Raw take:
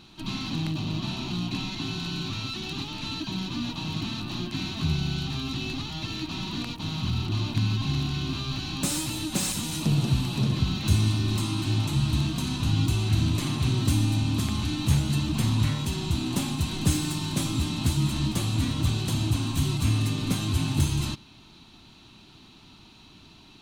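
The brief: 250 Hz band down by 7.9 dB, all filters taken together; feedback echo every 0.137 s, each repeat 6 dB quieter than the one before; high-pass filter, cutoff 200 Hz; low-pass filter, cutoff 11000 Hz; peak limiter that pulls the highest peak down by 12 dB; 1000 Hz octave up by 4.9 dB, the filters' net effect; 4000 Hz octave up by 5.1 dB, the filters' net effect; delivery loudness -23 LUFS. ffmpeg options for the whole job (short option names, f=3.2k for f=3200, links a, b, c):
-af "highpass=200,lowpass=11k,equalizer=f=250:t=o:g=-8,equalizer=f=1k:t=o:g=6,equalizer=f=4k:t=o:g=5.5,alimiter=level_in=2.5dB:limit=-24dB:level=0:latency=1,volume=-2.5dB,aecho=1:1:137|274|411|548|685|822:0.501|0.251|0.125|0.0626|0.0313|0.0157,volume=9.5dB"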